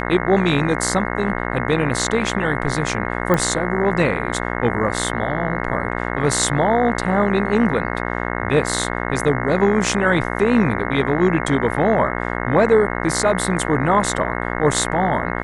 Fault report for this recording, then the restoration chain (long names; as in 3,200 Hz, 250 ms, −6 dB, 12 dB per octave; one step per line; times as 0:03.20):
mains buzz 60 Hz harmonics 36 −24 dBFS
0:03.34: click −6 dBFS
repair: click removal
hum removal 60 Hz, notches 36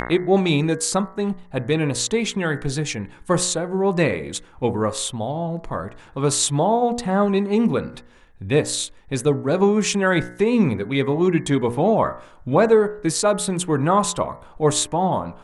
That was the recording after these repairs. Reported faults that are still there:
none of them is left